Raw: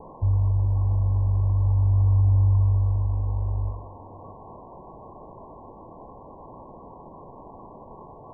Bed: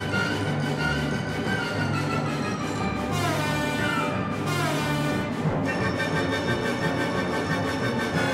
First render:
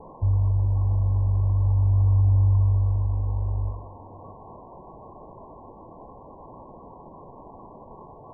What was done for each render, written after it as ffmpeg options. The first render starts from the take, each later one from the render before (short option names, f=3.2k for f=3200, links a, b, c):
-af "afftdn=nr=6:nf=-45"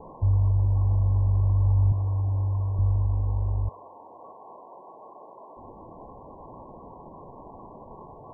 -filter_complex "[0:a]asettb=1/sr,asplit=3[a][b][c];[a]atrim=end=1.924[d];[b]atrim=start=1.92:end=2.79,asetpts=PTS-STARTPTS,afade=t=in:d=0.004:c=qsin,afade=t=out:st=0.866:d=0.004:c=qsin,highpass=f=190:p=1[e];[c]atrim=start=2.786[f];[d][e]acrossfade=d=0.004:c1=hsin:c2=qsin[g];[g][f]acrossfade=d=0.004:c1=qsin:c2=hsin,asettb=1/sr,asplit=3[h][i][j];[h]atrim=end=3.694[k];[i]atrim=start=3.69:end=5.57,asetpts=PTS-STARTPTS,afade=t=in:d=0.004:c=qsin,afade=t=out:st=1.876:d=0.004:c=qsin,highpass=420[l];[j]atrim=start=5.566[m];[k][l]acrossfade=d=0.004:c1=hsin:c2=qsin[n];[n][m]acrossfade=d=0.004:c1=qsin:c2=hsin"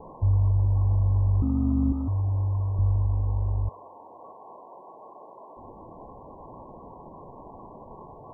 -filter_complex "[0:a]asettb=1/sr,asplit=3[a][b][c];[a]atrim=end=1.424[d];[b]atrim=start=1.42:end=2.08,asetpts=PTS-STARTPTS,afade=t=in:d=0.004:c=qsin,afade=t=out:st=0.656:d=0.004:c=qsin,aeval=exprs='val(0)*sin(2*PI*170*n/s)':c=same[e];[c]atrim=start=2.076[f];[d][e]acrossfade=d=0.004:c1=hsin:c2=qsin[g];[g][f]acrossfade=d=0.004:c1=qsin:c2=hsin"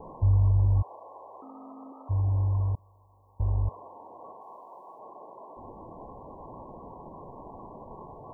-filter_complex "[0:a]asplit=3[a][b][c];[a]afade=t=out:st=0.81:d=0.02[d];[b]highpass=f=490:w=0.5412,highpass=f=490:w=1.3066,afade=t=in:st=0.81:d=0.02,afade=t=out:st=2.09:d=0.02[e];[c]afade=t=in:st=2.09:d=0.02[f];[d][e][f]amix=inputs=3:normalize=0,asettb=1/sr,asplit=3[g][h][i];[g]atrim=end=2.754[j];[h]atrim=start=2.75:end=3.4,asetpts=PTS-STARTPTS,afade=t=in:d=0.004:c=qsin,afade=t=out:st=0.646:d=0.004:c=qsin,aderivative[k];[i]atrim=start=3.396[l];[j][k]acrossfade=d=0.004:c1=hsin:c2=qsin[m];[m][l]acrossfade=d=0.004:c1=qsin:c2=hsin,asettb=1/sr,asplit=3[n][o][p];[n]atrim=end=4.414[q];[o]atrim=start=4.41:end=4.99,asetpts=PTS-STARTPTS,afade=t=in:d=0.004:c=qsin,afade=t=out:st=0.576:d=0.004:c=qsin,tiltshelf=f=970:g=-6.5[r];[p]atrim=start=4.986[s];[q][r]acrossfade=d=0.004:c1=hsin:c2=qsin[t];[t][s]acrossfade=d=0.004:c1=qsin:c2=hsin"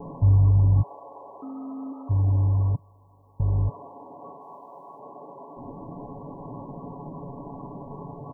-af "equalizer=f=190:w=0.88:g=11.5,aecho=1:1:7.1:0.65"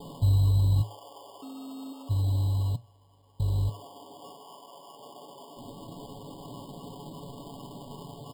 -af "acrusher=samples=11:mix=1:aa=0.000001,flanger=delay=8.2:depth=1.8:regen=80:speed=0.38:shape=triangular"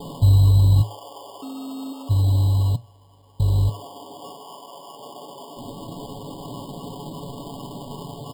-af "volume=8dB"